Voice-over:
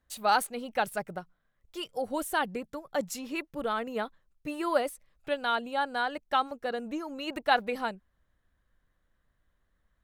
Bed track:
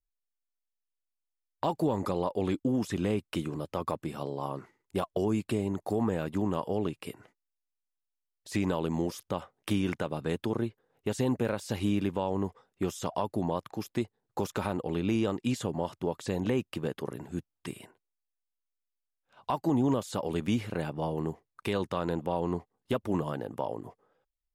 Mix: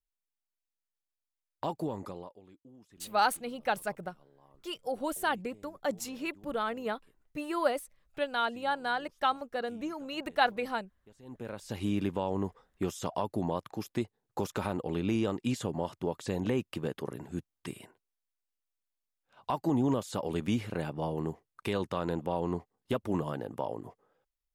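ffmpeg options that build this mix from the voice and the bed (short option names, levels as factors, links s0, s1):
-filter_complex "[0:a]adelay=2900,volume=0.841[s0];[1:a]volume=11.9,afade=t=out:st=1.69:d=0.72:silence=0.0707946,afade=t=in:st=11.22:d=0.8:silence=0.0501187[s1];[s0][s1]amix=inputs=2:normalize=0"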